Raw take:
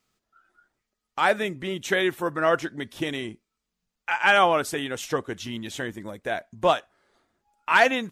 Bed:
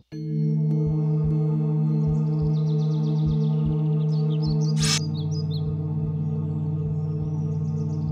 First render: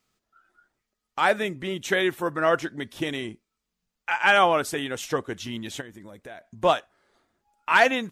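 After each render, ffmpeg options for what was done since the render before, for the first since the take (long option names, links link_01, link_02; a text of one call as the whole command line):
ffmpeg -i in.wav -filter_complex "[0:a]asplit=3[link_01][link_02][link_03];[link_01]afade=type=out:start_time=5.8:duration=0.02[link_04];[link_02]acompressor=threshold=-42dB:ratio=3:attack=3.2:release=140:knee=1:detection=peak,afade=type=in:start_time=5.8:duration=0.02,afade=type=out:start_time=6.48:duration=0.02[link_05];[link_03]afade=type=in:start_time=6.48:duration=0.02[link_06];[link_04][link_05][link_06]amix=inputs=3:normalize=0" out.wav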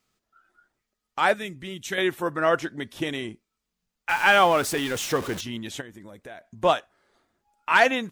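ffmpeg -i in.wav -filter_complex "[0:a]asettb=1/sr,asplit=3[link_01][link_02][link_03];[link_01]atrim=end=1.344[link_04];[link_02]atrim=start=1.34:end=1.98,asetpts=PTS-STARTPTS,afade=type=in:duration=0.004:curve=qsin,afade=type=out:start_time=0.636:duration=0.004:curve=qsin,equalizer=frequency=680:width=0.39:gain=-10.5[link_05];[link_03]atrim=start=1.976[link_06];[link_04][link_05]acrossfade=duration=0.004:curve1=hsin:curve2=qsin[link_07];[link_07][link_06]acrossfade=duration=0.004:curve1=qsin:curve2=hsin,asettb=1/sr,asplit=3[link_08][link_09][link_10];[link_08]atrim=end=4.094[link_11];[link_09]atrim=start=4.09:end=5.41,asetpts=PTS-STARTPTS,afade=type=in:duration=0.004:curve=qsin,afade=type=out:start_time=1.316:duration=0.004:curve=qsin,aeval=exprs='val(0)+0.5*0.0316*sgn(val(0))':channel_layout=same[link_12];[link_10]atrim=start=5.406[link_13];[link_11][link_12]acrossfade=duration=0.004:curve1=hsin:curve2=qsin[link_14];[link_14][link_13]acrossfade=duration=0.004:curve1=qsin:curve2=hsin" out.wav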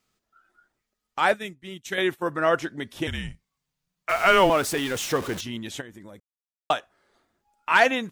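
ffmpeg -i in.wav -filter_complex "[0:a]asettb=1/sr,asplit=3[link_01][link_02][link_03];[link_01]atrim=end=1.324[link_04];[link_02]atrim=start=1.32:end=2.26,asetpts=PTS-STARTPTS,afade=type=in:duration=0.004:curve=qsin,afade=type=out:start_time=0.936:duration=0.004:curve=qsin,agate=range=-33dB:threshold=-33dB:ratio=3:release=100:detection=peak[link_05];[link_03]atrim=start=2.256[link_06];[link_04][link_05]acrossfade=duration=0.004:curve1=hsin:curve2=qsin[link_07];[link_07][link_06]acrossfade=duration=0.004:curve1=qsin:curve2=hsin,asettb=1/sr,asplit=3[link_08][link_09][link_10];[link_08]atrim=end=3.074[link_11];[link_09]atrim=start=3.07:end=4.5,asetpts=PTS-STARTPTS,afade=type=in:duration=0.004:curve=qsin,afade=type=out:start_time=1.426:duration=0.004:curve=qsin,afreqshift=-190[link_12];[link_10]atrim=start=4.496[link_13];[link_11][link_12]acrossfade=duration=0.004:curve1=hsin:curve2=qsin[link_14];[link_14][link_13]acrossfade=duration=0.004:curve1=qsin:curve2=hsin,asplit=3[link_15][link_16][link_17];[link_15]atrim=end=6.2,asetpts=PTS-STARTPTS,afade=type=out:start_time=6.196:duration=0.004:curve=hsin[link_18];[link_16]atrim=start=6.2:end=6.7,asetpts=PTS-STARTPTS,volume=0[link_19];[link_17]atrim=start=6.7,asetpts=PTS-STARTPTS,afade=type=in:duration=0.004:curve=hsin[link_20];[link_18][link_19][link_20]concat=n=3:v=0:a=1" out.wav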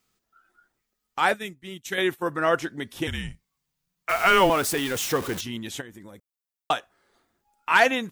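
ffmpeg -i in.wav -af "highshelf=frequency=11000:gain=8.5,bandreject=frequency=610:width=12" out.wav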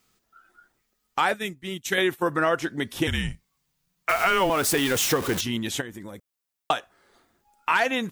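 ffmpeg -i in.wav -filter_complex "[0:a]asplit=2[link_01][link_02];[link_02]alimiter=limit=-15dB:level=0:latency=1:release=393,volume=-1dB[link_03];[link_01][link_03]amix=inputs=2:normalize=0,acompressor=threshold=-19dB:ratio=4" out.wav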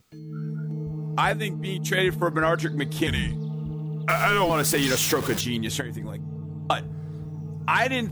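ffmpeg -i in.wav -i bed.wav -filter_complex "[1:a]volume=-8.5dB[link_01];[0:a][link_01]amix=inputs=2:normalize=0" out.wav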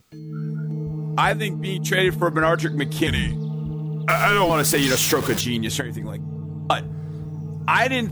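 ffmpeg -i in.wav -af "volume=3.5dB" out.wav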